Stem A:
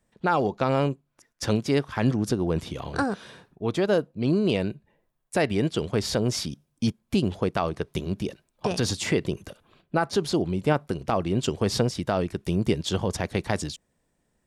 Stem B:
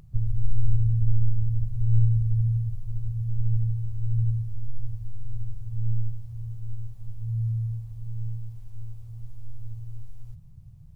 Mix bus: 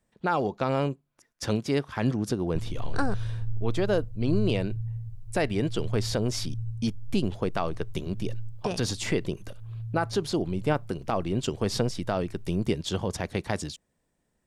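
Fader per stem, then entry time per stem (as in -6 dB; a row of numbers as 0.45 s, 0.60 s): -3.0 dB, -9.5 dB; 0.00 s, 2.40 s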